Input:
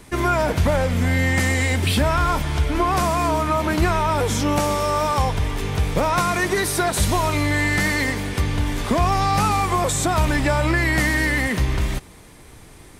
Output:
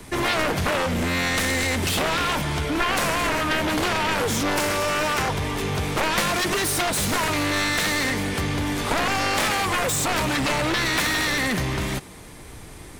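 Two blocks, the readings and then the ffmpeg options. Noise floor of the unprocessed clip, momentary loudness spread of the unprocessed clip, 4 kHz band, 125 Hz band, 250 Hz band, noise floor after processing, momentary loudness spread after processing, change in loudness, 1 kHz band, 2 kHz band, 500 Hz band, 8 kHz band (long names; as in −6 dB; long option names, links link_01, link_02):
−44 dBFS, 4 LU, +4.0 dB, −7.5 dB, −3.0 dB, −41 dBFS, 4 LU, −2.0 dB, −3.5 dB, 0.0 dB, −3.0 dB, +1.0 dB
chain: -filter_complex "[0:a]acrossover=split=110|1300|2200[link_01][link_02][link_03][link_04];[link_01]acompressor=threshold=-38dB:ratio=6[link_05];[link_05][link_02][link_03][link_04]amix=inputs=4:normalize=0,aeval=exprs='0.562*(cos(1*acos(clip(val(0)/0.562,-1,1)))-cos(1*PI/2))+0.282*(cos(7*acos(clip(val(0)/0.562,-1,1)))-cos(7*PI/2))':channel_layout=same,volume=-4.5dB"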